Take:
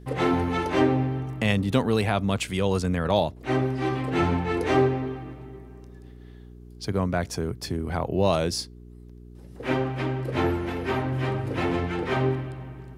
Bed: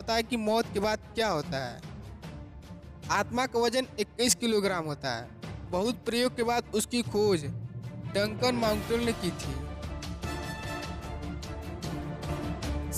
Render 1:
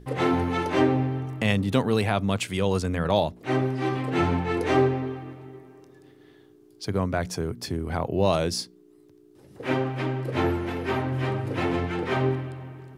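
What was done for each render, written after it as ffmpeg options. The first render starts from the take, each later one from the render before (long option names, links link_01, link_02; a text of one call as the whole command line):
ffmpeg -i in.wav -af "bandreject=frequency=60:width_type=h:width=4,bandreject=frequency=120:width_type=h:width=4,bandreject=frequency=180:width_type=h:width=4,bandreject=frequency=240:width_type=h:width=4" out.wav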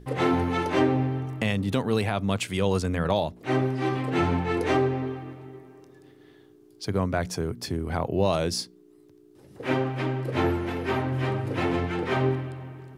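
ffmpeg -i in.wav -af "alimiter=limit=-12dB:level=0:latency=1:release=227" out.wav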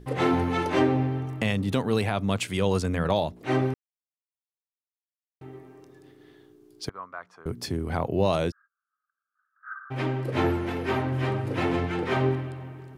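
ffmpeg -i in.wav -filter_complex "[0:a]asettb=1/sr,asplit=3[link_01][link_02][link_03];[link_01]atrim=end=6.894[link_04];[link_02]atrim=start=6.89:end=7.46,asetpts=PTS-STARTPTS,afade=type=in:duration=0.004:curve=qsin,afade=type=out:start_time=0.566:duration=0.004:curve=qsin,bandpass=frequency=1200:width_type=q:width=4.5[link_05];[link_03]atrim=start=7.456[link_06];[link_04][link_05]acrossfade=duration=0.004:curve1=hsin:curve2=qsin[link_07];[link_07][link_06]acrossfade=duration=0.004:curve1=qsin:curve2=hsin,asplit=3[link_08][link_09][link_10];[link_08]afade=type=out:start_time=8.5:duration=0.02[link_11];[link_09]asuperpass=centerf=1400:order=8:qfactor=3.3,afade=type=in:start_time=8.5:duration=0.02,afade=type=out:start_time=9.9:duration=0.02[link_12];[link_10]afade=type=in:start_time=9.9:duration=0.02[link_13];[link_11][link_12][link_13]amix=inputs=3:normalize=0,asplit=3[link_14][link_15][link_16];[link_14]atrim=end=3.74,asetpts=PTS-STARTPTS,afade=type=out:start_time=3.736:duration=0.004:curve=hsin[link_17];[link_15]atrim=start=3.74:end=5.41,asetpts=PTS-STARTPTS,volume=0[link_18];[link_16]atrim=start=5.41,asetpts=PTS-STARTPTS,afade=type=in:duration=0.004:curve=hsin[link_19];[link_17][link_18][link_19]concat=n=3:v=0:a=1" out.wav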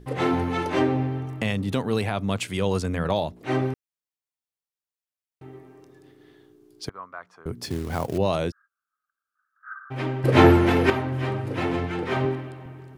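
ffmpeg -i in.wav -filter_complex "[0:a]asettb=1/sr,asplit=3[link_01][link_02][link_03];[link_01]atrim=end=7.644[link_04];[link_02]atrim=start=7.64:end=8.18,asetpts=PTS-STARTPTS,afade=type=in:duration=0.004:curve=qsin,afade=type=out:start_time=0.536:duration=0.004:curve=qsin,acrusher=bits=4:mode=log:mix=0:aa=0.000001[link_05];[link_03]atrim=start=8.176[link_06];[link_04][link_05]acrossfade=duration=0.004:curve1=hsin:curve2=qsin[link_07];[link_07][link_06]acrossfade=duration=0.004:curve1=qsin:curve2=hsin,asettb=1/sr,asplit=3[link_08][link_09][link_10];[link_08]atrim=end=12.254[link_11];[link_09]atrim=start=12.25:end=12.66,asetpts=PTS-STARTPTS,afade=type=in:duration=0.004:curve=qsin,afade=type=out:start_time=0.406:duration=0.004:curve=qsin,highpass=140[link_12];[link_10]atrim=start=12.656[link_13];[link_11][link_12]acrossfade=duration=0.004:curve1=hsin:curve2=qsin[link_14];[link_14][link_13]acrossfade=duration=0.004:curve1=qsin:curve2=hsin,asplit=3[link_15][link_16][link_17];[link_15]atrim=end=10.242[link_18];[link_16]atrim=start=10.238:end=10.902,asetpts=PTS-STARTPTS,volume=10.5dB[link_19];[link_17]atrim=start=10.898[link_20];[link_18][link_19]acrossfade=duration=0.004:curve1=hsin:curve2=hsin[link_21];[link_21][link_20]acrossfade=duration=0.004:curve1=hsin:curve2=hsin" out.wav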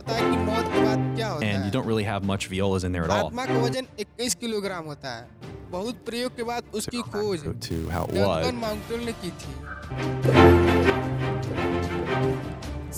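ffmpeg -i in.wav -i bed.wav -filter_complex "[1:a]volume=-1.5dB[link_01];[0:a][link_01]amix=inputs=2:normalize=0" out.wav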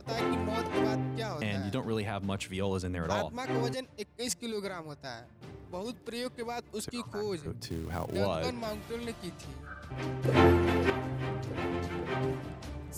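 ffmpeg -i in.wav -af "volume=-8dB" out.wav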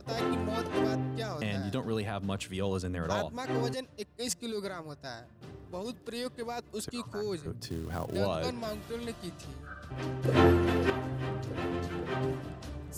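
ffmpeg -i in.wav -af "equalizer=frequency=2200:width=7.9:gain=-7.5,bandreject=frequency=860:width=12" out.wav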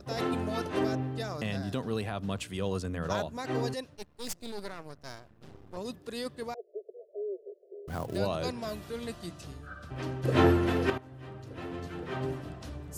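ffmpeg -i in.wav -filter_complex "[0:a]asettb=1/sr,asplit=3[link_01][link_02][link_03];[link_01]atrim=end=3.954[link_04];[link_02]atrim=start=3.95:end=5.77,asetpts=PTS-STARTPTS,afade=type=in:duration=0.004:curve=qsin,afade=type=out:start_time=1.816:duration=0.004:curve=qsin,aeval=exprs='max(val(0),0)':channel_layout=same[link_05];[link_03]atrim=start=5.766[link_06];[link_04][link_05]acrossfade=duration=0.004:curve1=hsin:curve2=qsin[link_07];[link_07][link_06]acrossfade=duration=0.004:curve1=qsin:curve2=hsin,asettb=1/sr,asplit=3[link_08][link_09][link_10];[link_08]atrim=end=6.544[link_11];[link_09]atrim=start=6.54:end=7.88,asetpts=PTS-STARTPTS,afade=type=in:duration=0.004:curve=qsin,afade=type=out:start_time=1.336:duration=0.004:curve=qsin,asuperpass=centerf=500:order=20:qfactor=1.6[link_12];[link_10]atrim=start=7.876[link_13];[link_11][link_12]acrossfade=duration=0.004:curve1=hsin:curve2=qsin[link_14];[link_14][link_13]acrossfade=duration=0.004:curve1=qsin:curve2=hsin,asplit=2[link_15][link_16];[link_15]atrim=end=10.98,asetpts=PTS-STARTPTS,afade=type=out:start_time=10.976:duration=0.004:curve=hsin:silence=0.158489[link_17];[link_16]atrim=start=10.98,asetpts=PTS-STARTPTS,afade=type=in:duration=1.58:silence=0.158489[link_18];[link_17][link_18]concat=n=2:v=0:a=1" out.wav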